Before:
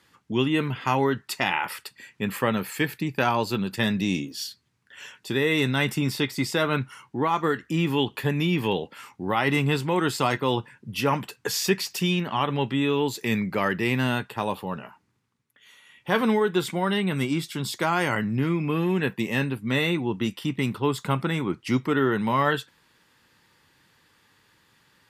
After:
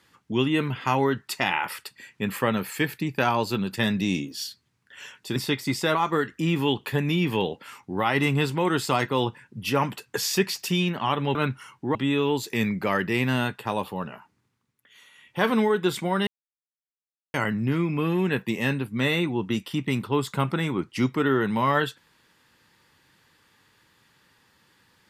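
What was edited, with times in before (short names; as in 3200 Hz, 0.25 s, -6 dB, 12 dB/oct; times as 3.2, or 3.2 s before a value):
5.36–6.07 cut
6.66–7.26 move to 12.66
16.98–18.05 mute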